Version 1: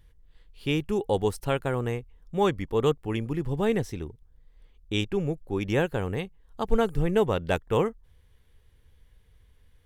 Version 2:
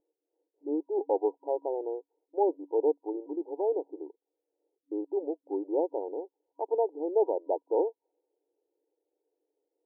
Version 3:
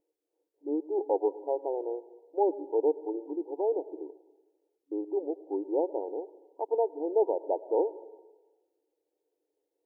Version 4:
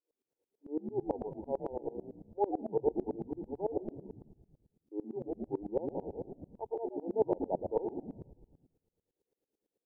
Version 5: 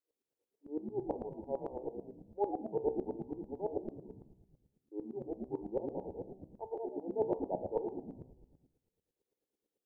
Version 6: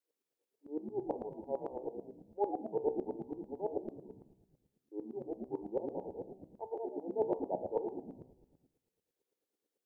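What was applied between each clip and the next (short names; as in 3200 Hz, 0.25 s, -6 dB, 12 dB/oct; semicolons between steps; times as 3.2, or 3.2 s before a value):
FFT band-pass 290–960 Hz; low-pass opened by the level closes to 510 Hz, open at -22 dBFS; gain -1.5 dB
reverb RT60 1.2 s, pre-delay 92 ms, DRR 16.5 dB
on a send: frequency-shifting echo 0.119 s, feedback 54%, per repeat -87 Hz, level -6 dB; on the sum: dB-ramp tremolo swelling 9 Hz, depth 24 dB
de-hum 63.69 Hz, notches 18; gain -2 dB
low shelf 130 Hz -11 dB; gain +1 dB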